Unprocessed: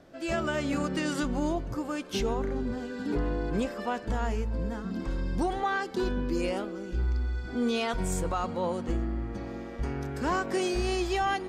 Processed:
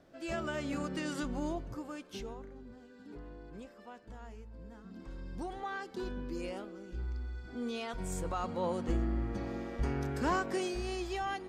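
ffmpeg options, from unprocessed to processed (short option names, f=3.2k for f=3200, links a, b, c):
-af "volume=11dB,afade=t=out:st=1.52:d=0.99:silence=0.251189,afade=t=in:st=4.54:d=1.3:silence=0.354813,afade=t=in:st=7.91:d=1.26:silence=0.354813,afade=t=out:st=10.12:d=0.65:silence=0.421697"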